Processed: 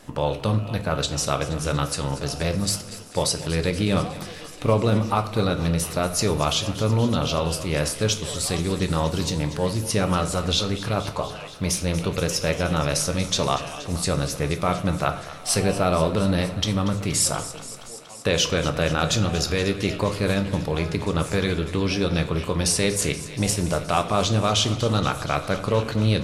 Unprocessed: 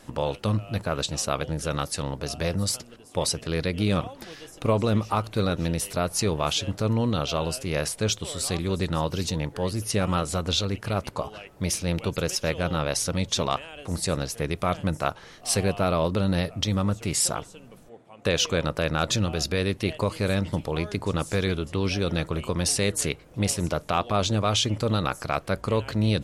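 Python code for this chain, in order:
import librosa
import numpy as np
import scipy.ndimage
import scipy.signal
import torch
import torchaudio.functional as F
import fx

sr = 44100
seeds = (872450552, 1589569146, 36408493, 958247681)

p1 = x + fx.echo_thinned(x, sr, ms=237, feedback_pct=78, hz=500.0, wet_db=-15, dry=0)
p2 = fx.room_shoebox(p1, sr, seeds[0], volume_m3=110.0, walls='mixed', distance_m=0.35)
y = p2 * librosa.db_to_amplitude(2.0)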